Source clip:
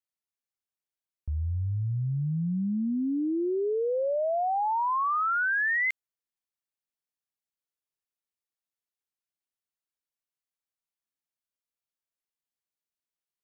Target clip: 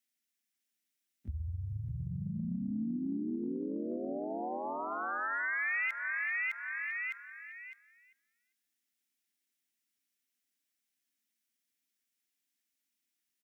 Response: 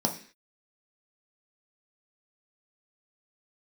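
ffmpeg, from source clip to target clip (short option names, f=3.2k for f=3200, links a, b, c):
-filter_complex "[0:a]highpass=f=69:w=0.5412,highpass=f=69:w=1.3066,asplit=2[a][b];[b]adelay=397,lowpass=f=1.2k:p=1,volume=-11dB,asplit=2[c][d];[d]adelay=397,lowpass=f=1.2k:p=1,volume=0.21,asplit=2[e][f];[f]adelay=397,lowpass=f=1.2k:p=1,volume=0.21[g];[c][e][g]amix=inputs=3:normalize=0[h];[a][h]amix=inputs=2:normalize=0,asplit=4[i][j][k][l];[j]asetrate=33038,aresample=44100,atempo=1.33484,volume=-10dB[m];[k]asetrate=52444,aresample=44100,atempo=0.840896,volume=-9dB[n];[l]asetrate=58866,aresample=44100,atempo=0.749154,volume=-12dB[o];[i][m][n][o]amix=inputs=4:normalize=0,equalizer=f=125:t=o:w=1:g=-7,equalizer=f=250:t=o:w=1:g=9,equalizer=f=500:t=o:w=1:g=-6,equalizer=f=1k:t=o:w=1:g=-9,equalizer=f=2k:t=o:w=1:g=6,aecho=1:1:608|1216|1824:0.447|0.121|0.0326,asplit=2[p][q];[1:a]atrim=start_sample=2205[r];[q][r]afir=irnorm=-1:irlink=0,volume=-22.5dB[s];[p][s]amix=inputs=2:normalize=0,acompressor=threshold=-35dB:ratio=6,highshelf=f=2.4k:g=7"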